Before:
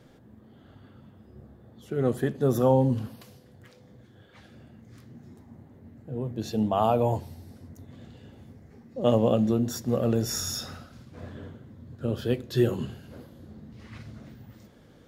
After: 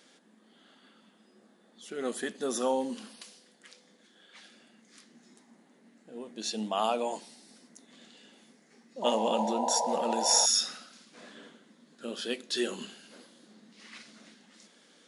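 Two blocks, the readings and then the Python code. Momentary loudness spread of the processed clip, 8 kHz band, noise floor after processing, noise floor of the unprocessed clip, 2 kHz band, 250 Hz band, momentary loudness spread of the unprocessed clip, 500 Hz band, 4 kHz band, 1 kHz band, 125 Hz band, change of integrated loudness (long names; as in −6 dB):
22 LU, +8.5 dB, −63 dBFS, −55 dBFS, +2.0 dB, −9.0 dB, 22 LU, −6.0 dB, +7.5 dB, 0.0 dB, below −25 dB, −3.0 dB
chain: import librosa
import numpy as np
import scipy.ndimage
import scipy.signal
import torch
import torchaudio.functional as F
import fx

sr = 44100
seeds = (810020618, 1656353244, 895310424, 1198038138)

y = fx.brickwall_bandpass(x, sr, low_hz=170.0, high_hz=11000.0)
y = fx.spec_paint(y, sr, seeds[0], shape='noise', start_s=9.02, length_s=1.44, low_hz=450.0, high_hz=1000.0, level_db=-26.0)
y = fx.tilt_shelf(y, sr, db=-9.5, hz=1500.0)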